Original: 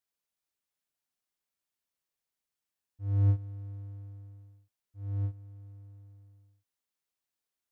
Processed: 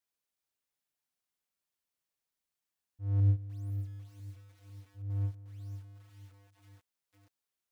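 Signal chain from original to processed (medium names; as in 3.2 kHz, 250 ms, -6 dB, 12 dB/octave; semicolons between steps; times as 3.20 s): 3.20–5.10 s: peaking EQ 990 Hz -11 dB 1.7 oct; bit-crushed delay 498 ms, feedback 55%, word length 9-bit, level -11 dB; trim -1 dB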